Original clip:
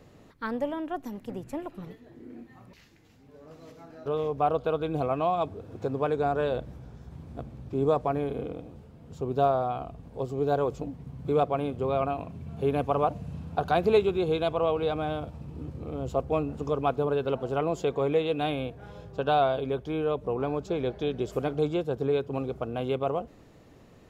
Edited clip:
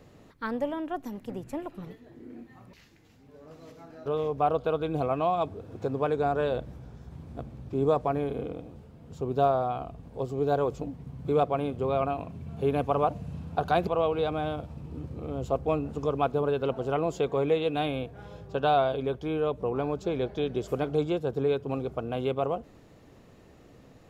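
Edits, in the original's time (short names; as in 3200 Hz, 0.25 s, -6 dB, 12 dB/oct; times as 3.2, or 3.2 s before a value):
13.87–14.51 cut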